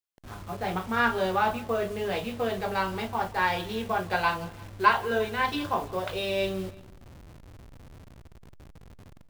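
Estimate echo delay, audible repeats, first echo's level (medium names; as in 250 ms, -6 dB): 172 ms, 2, -21.5 dB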